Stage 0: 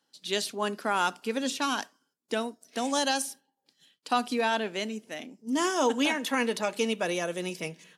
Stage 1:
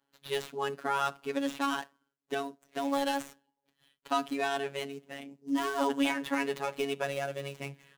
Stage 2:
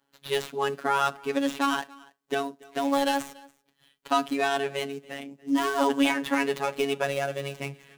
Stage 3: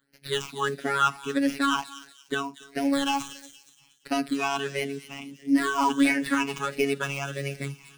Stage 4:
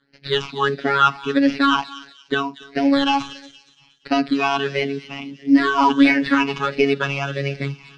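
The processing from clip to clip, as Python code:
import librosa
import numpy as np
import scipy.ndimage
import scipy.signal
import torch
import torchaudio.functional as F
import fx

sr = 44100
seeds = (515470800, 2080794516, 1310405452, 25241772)

y1 = scipy.signal.medfilt(x, 9)
y1 = fx.robotise(y1, sr, hz=139.0)
y2 = y1 + 10.0 ** (-23.5 / 20.0) * np.pad(y1, (int(285 * sr / 1000.0), 0))[:len(y1)]
y2 = y2 * librosa.db_to_amplitude(5.5)
y3 = fx.phaser_stages(y2, sr, stages=8, low_hz=510.0, high_hz=1100.0, hz=1.5, feedback_pct=25)
y3 = fx.echo_wet_highpass(y3, sr, ms=235, feedback_pct=39, hz=4100.0, wet_db=-8.0)
y3 = y3 * librosa.db_to_amplitude(4.0)
y4 = scipy.signal.sosfilt(scipy.signal.cheby1(3, 1.0, 4600.0, 'lowpass', fs=sr, output='sos'), y3)
y4 = y4 * librosa.db_to_amplitude(8.0)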